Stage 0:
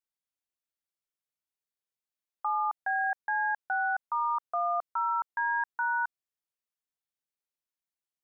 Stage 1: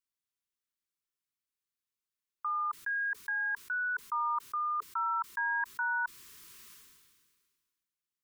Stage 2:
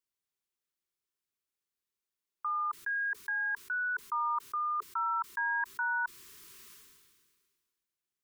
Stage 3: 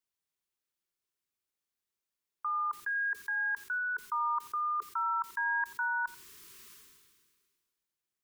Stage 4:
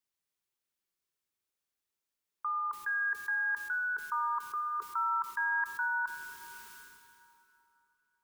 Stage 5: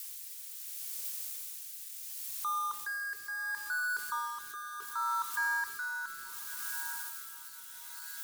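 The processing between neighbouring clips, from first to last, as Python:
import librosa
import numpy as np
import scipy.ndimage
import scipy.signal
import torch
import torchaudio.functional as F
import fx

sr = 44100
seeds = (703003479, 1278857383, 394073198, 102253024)

y1 = scipy.signal.sosfilt(scipy.signal.ellip(3, 1.0, 40, [430.0, 1000.0], 'bandstop', fs=sr, output='sos'), x)
y1 = fx.sustainer(y1, sr, db_per_s=33.0)
y2 = fx.peak_eq(y1, sr, hz=380.0, db=6.0, octaves=0.36)
y3 = fx.echo_feedback(y2, sr, ms=87, feedback_pct=16, wet_db=-20)
y4 = fx.rev_plate(y3, sr, seeds[0], rt60_s=3.4, hf_ratio=0.65, predelay_ms=0, drr_db=10.5)
y5 = y4 + 0.5 * 10.0 ** (-33.0 / 20.0) * np.diff(np.sign(y4), prepend=np.sign(y4[:1]))
y5 = fx.echo_diffused(y5, sr, ms=948, feedback_pct=42, wet_db=-11.5)
y5 = fx.rotary(y5, sr, hz=0.7)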